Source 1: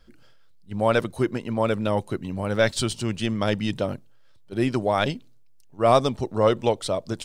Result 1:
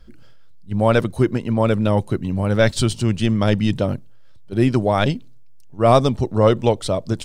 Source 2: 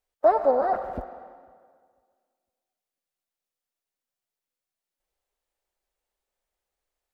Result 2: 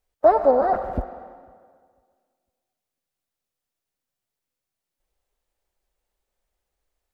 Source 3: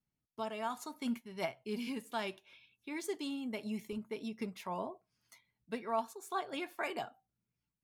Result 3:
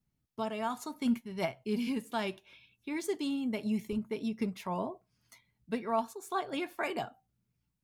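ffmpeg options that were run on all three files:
-af "lowshelf=f=240:g=9,volume=1.33"

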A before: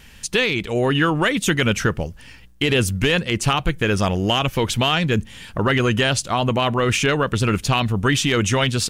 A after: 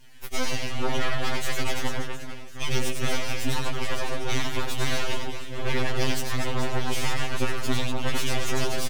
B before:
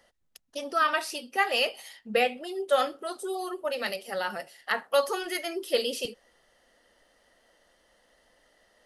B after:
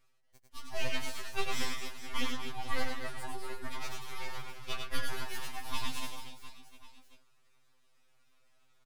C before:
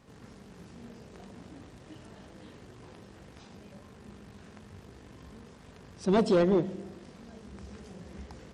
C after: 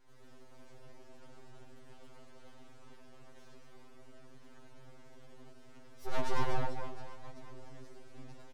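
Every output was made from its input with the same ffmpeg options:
-af "aecho=1:1:100|240|436|710.4|1095:0.631|0.398|0.251|0.158|0.1,aeval=exprs='abs(val(0))':c=same,afftfilt=real='re*2.45*eq(mod(b,6),0)':imag='im*2.45*eq(mod(b,6),0)':win_size=2048:overlap=0.75,volume=0.501"

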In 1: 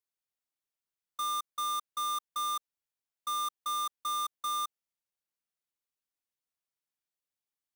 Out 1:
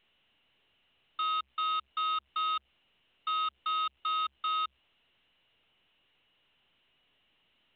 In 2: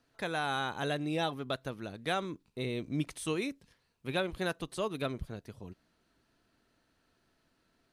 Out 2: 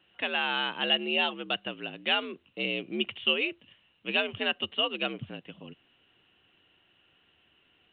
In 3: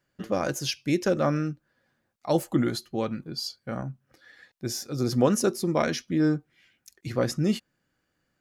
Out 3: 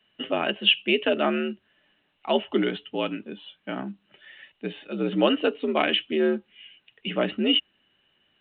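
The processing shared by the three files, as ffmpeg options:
-af "afreqshift=66,lowpass=f=2900:t=q:w=14" -ar 8000 -c:a pcm_alaw

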